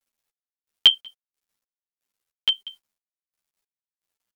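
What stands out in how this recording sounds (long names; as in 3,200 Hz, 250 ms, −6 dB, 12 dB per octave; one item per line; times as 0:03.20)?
chopped level 1.5 Hz, depth 60%, duty 45%
a quantiser's noise floor 12 bits, dither none
a shimmering, thickened sound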